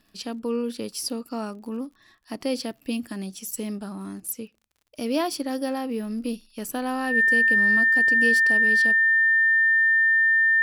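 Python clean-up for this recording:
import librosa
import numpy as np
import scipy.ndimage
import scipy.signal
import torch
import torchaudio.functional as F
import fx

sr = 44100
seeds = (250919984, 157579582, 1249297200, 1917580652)

y = fx.fix_declick_ar(x, sr, threshold=6.5)
y = fx.notch(y, sr, hz=1800.0, q=30.0)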